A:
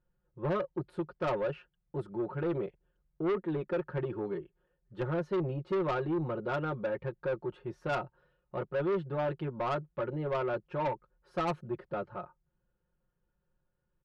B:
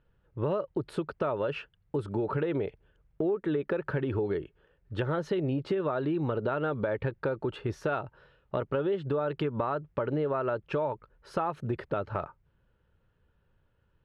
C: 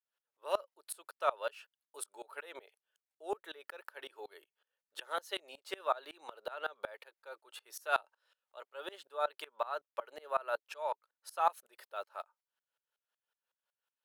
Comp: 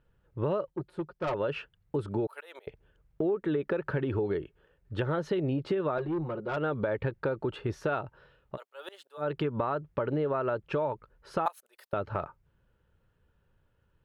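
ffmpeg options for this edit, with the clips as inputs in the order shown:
-filter_complex "[0:a]asplit=2[s0][s1];[2:a]asplit=3[s2][s3][s4];[1:a]asplit=6[s5][s6][s7][s8][s9][s10];[s5]atrim=end=0.702[s11];[s0]atrim=start=0.698:end=1.342[s12];[s6]atrim=start=1.338:end=2.272[s13];[s2]atrim=start=2.268:end=2.672[s14];[s7]atrim=start=2.668:end=5.982[s15];[s1]atrim=start=5.978:end=6.572[s16];[s8]atrim=start=6.568:end=8.58[s17];[s3]atrim=start=8.52:end=9.23[s18];[s9]atrim=start=9.17:end=11.462[s19];[s4]atrim=start=11.458:end=11.932[s20];[s10]atrim=start=11.928[s21];[s11][s12]acrossfade=d=0.004:c1=hsin:c2=hsin[s22];[s22][s13]acrossfade=d=0.004:c1=hsin:c2=hsin[s23];[s23][s14]acrossfade=d=0.004:c1=hsin:c2=hsin[s24];[s24][s15]acrossfade=d=0.004:c1=hsin:c2=hsin[s25];[s25][s16]acrossfade=d=0.004:c1=hsin:c2=hsin[s26];[s26][s17]acrossfade=d=0.004:c1=hsin:c2=hsin[s27];[s27][s18]acrossfade=d=0.06:c1=tri:c2=tri[s28];[s28][s19]acrossfade=d=0.06:c1=tri:c2=tri[s29];[s29][s20]acrossfade=d=0.004:c1=hsin:c2=hsin[s30];[s30][s21]acrossfade=d=0.004:c1=hsin:c2=hsin"

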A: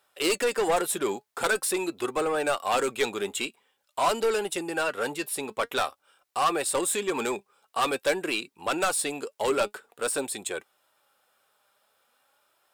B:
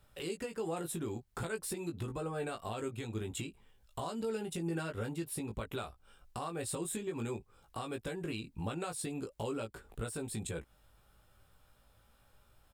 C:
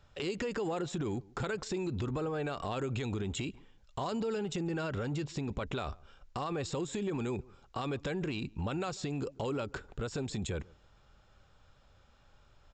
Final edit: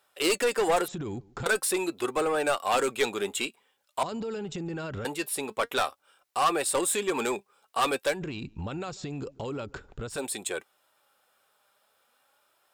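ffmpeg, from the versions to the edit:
-filter_complex "[2:a]asplit=3[s0][s1][s2];[0:a]asplit=4[s3][s4][s5][s6];[s3]atrim=end=0.882[s7];[s0]atrim=start=0.878:end=1.462[s8];[s4]atrim=start=1.458:end=4.032[s9];[s1]atrim=start=4.028:end=5.052[s10];[s5]atrim=start=5.048:end=8.21[s11];[s2]atrim=start=8.05:end=10.25[s12];[s6]atrim=start=10.09[s13];[s7][s8]acrossfade=d=0.004:c1=hsin:c2=hsin[s14];[s14][s9]acrossfade=d=0.004:c1=hsin:c2=hsin[s15];[s15][s10]acrossfade=d=0.004:c1=hsin:c2=hsin[s16];[s16][s11]acrossfade=d=0.004:c1=hsin:c2=hsin[s17];[s17][s12]acrossfade=d=0.16:c1=tri:c2=tri[s18];[s18][s13]acrossfade=d=0.16:c1=tri:c2=tri"

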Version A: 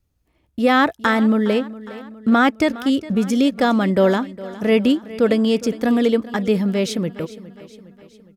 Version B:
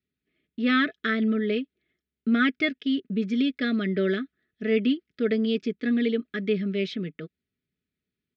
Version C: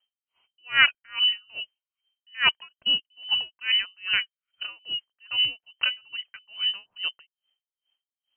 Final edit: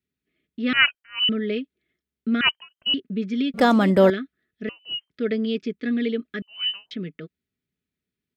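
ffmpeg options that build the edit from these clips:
-filter_complex "[2:a]asplit=4[s0][s1][s2][s3];[1:a]asplit=6[s4][s5][s6][s7][s8][s9];[s4]atrim=end=0.732[s10];[s0]atrim=start=0.728:end=1.292[s11];[s5]atrim=start=1.288:end=2.412[s12];[s1]atrim=start=2.408:end=2.942[s13];[s6]atrim=start=2.938:end=3.542[s14];[0:a]atrim=start=3.538:end=4.102[s15];[s7]atrim=start=4.098:end=4.692[s16];[s2]atrim=start=4.688:end=5.102[s17];[s8]atrim=start=5.098:end=6.422[s18];[s3]atrim=start=6.418:end=6.912[s19];[s9]atrim=start=6.908[s20];[s10][s11]acrossfade=d=0.004:c1=hsin:c2=hsin[s21];[s21][s12]acrossfade=d=0.004:c1=hsin:c2=hsin[s22];[s22][s13]acrossfade=d=0.004:c1=hsin:c2=hsin[s23];[s23][s14]acrossfade=d=0.004:c1=hsin:c2=hsin[s24];[s24][s15]acrossfade=d=0.004:c1=hsin:c2=hsin[s25];[s25][s16]acrossfade=d=0.004:c1=hsin:c2=hsin[s26];[s26][s17]acrossfade=d=0.004:c1=hsin:c2=hsin[s27];[s27][s18]acrossfade=d=0.004:c1=hsin:c2=hsin[s28];[s28][s19]acrossfade=d=0.004:c1=hsin:c2=hsin[s29];[s29][s20]acrossfade=d=0.004:c1=hsin:c2=hsin"

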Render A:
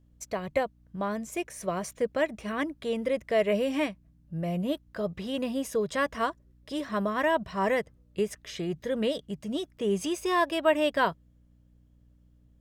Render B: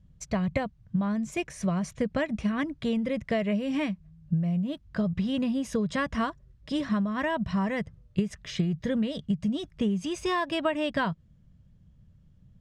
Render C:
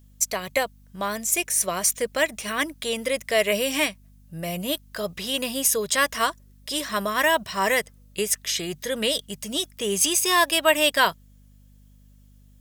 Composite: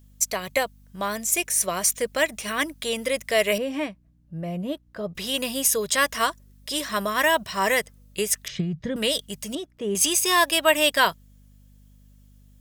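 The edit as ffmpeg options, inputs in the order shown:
-filter_complex "[0:a]asplit=2[s0][s1];[2:a]asplit=4[s2][s3][s4][s5];[s2]atrim=end=3.582[s6];[s0]atrim=start=3.578:end=5.152[s7];[s3]atrim=start=5.148:end=8.482[s8];[1:a]atrim=start=8.478:end=8.962[s9];[s4]atrim=start=8.958:end=9.552[s10];[s1]atrim=start=9.548:end=9.952[s11];[s5]atrim=start=9.948[s12];[s6][s7]acrossfade=d=0.004:c1=hsin:c2=hsin[s13];[s13][s8]acrossfade=d=0.004:c1=hsin:c2=hsin[s14];[s14][s9]acrossfade=d=0.004:c1=hsin:c2=hsin[s15];[s15][s10]acrossfade=d=0.004:c1=hsin:c2=hsin[s16];[s16][s11]acrossfade=d=0.004:c1=hsin:c2=hsin[s17];[s17][s12]acrossfade=d=0.004:c1=hsin:c2=hsin"

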